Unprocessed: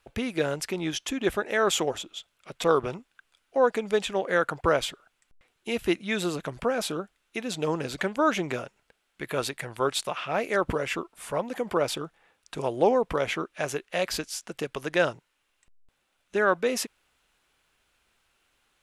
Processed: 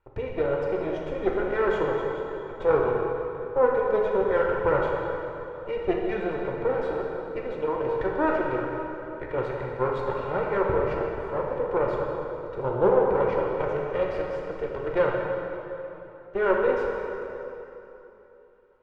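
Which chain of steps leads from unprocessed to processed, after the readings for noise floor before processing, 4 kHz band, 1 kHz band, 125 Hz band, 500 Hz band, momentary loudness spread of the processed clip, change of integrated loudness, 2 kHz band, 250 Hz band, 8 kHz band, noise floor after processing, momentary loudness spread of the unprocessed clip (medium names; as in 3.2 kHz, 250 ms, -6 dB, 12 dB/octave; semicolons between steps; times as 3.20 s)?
-75 dBFS, under -15 dB, +1.5 dB, +2.0 dB, +4.0 dB, 11 LU, +1.0 dB, -2.5 dB, -0.5 dB, under -25 dB, -48 dBFS, 11 LU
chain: comb filter that takes the minimum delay 2.1 ms; low-pass 1.2 kHz 12 dB/octave; plate-style reverb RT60 3.2 s, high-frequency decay 0.75×, DRR -2 dB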